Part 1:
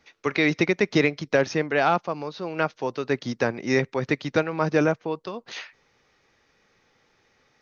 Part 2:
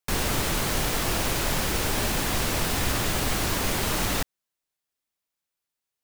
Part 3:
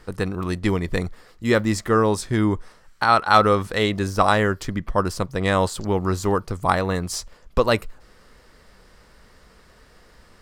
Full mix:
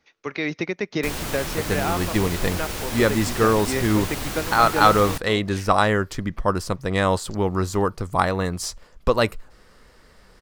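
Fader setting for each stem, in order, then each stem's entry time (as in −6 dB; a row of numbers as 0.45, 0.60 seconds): −5.0, −4.0, −0.5 decibels; 0.00, 0.95, 1.50 seconds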